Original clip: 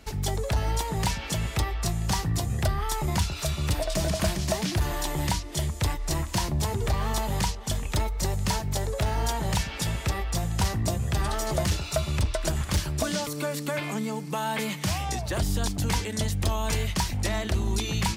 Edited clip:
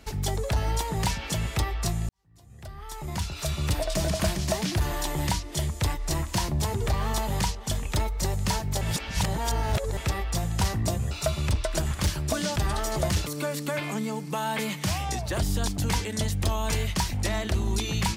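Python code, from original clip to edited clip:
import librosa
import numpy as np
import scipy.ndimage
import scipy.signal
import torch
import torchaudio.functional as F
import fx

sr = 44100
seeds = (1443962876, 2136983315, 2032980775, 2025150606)

y = fx.edit(x, sr, fx.fade_in_span(start_s=2.09, length_s=1.47, curve='qua'),
    fx.reverse_span(start_s=8.81, length_s=1.16),
    fx.move(start_s=11.11, length_s=0.7, to_s=13.26), tone=tone)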